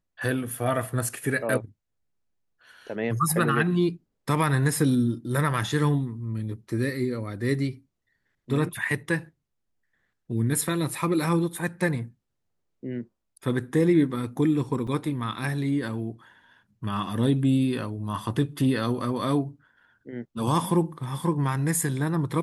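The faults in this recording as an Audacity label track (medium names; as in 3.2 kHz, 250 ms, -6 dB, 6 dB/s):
14.870000	14.870000	dropout 4.7 ms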